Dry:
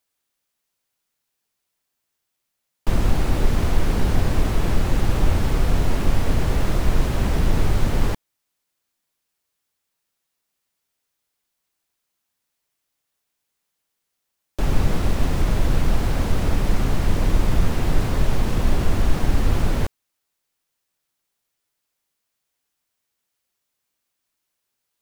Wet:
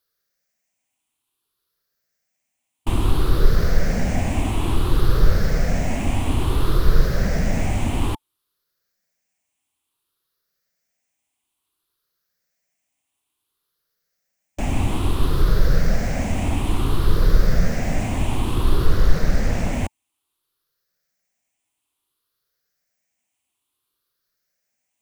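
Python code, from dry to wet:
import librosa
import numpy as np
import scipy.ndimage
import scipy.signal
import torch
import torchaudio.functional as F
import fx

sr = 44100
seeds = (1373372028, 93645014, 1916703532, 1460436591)

y = fx.spec_ripple(x, sr, per_octave=0.6, drift_hz=0.58, depth_db=11)
y = fx.notch(y, sr, hz=880.0, q=21.0)
y = fx.doppler_dist(y, sr, depth_ms=0.79, at=(18.86, 19.73))
y = y * 10.0 ** (-1.0 / 20.0)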